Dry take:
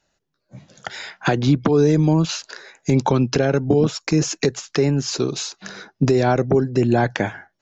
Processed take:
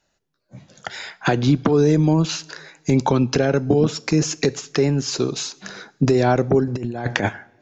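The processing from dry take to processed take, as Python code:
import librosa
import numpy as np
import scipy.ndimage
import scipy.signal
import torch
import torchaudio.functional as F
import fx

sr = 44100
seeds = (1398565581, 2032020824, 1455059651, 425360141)

y = fx.rev_double_slope(x, sr, seeds[0], early_s=0.54, late_s=2.5, knee_db=-18, drr_db=18.0)
y = fx.over_compress(y, sr, threshold_db=-22.0, ratio=-0.5, at=(6.67, 7.29))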